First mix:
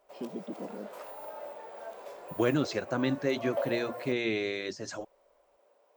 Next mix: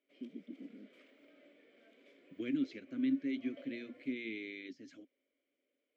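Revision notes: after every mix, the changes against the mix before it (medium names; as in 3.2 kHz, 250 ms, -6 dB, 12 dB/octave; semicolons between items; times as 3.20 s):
background +3.0 dB; master: add vowel filter i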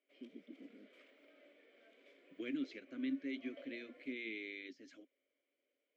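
master: add tone controls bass -14 dB, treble -2 dB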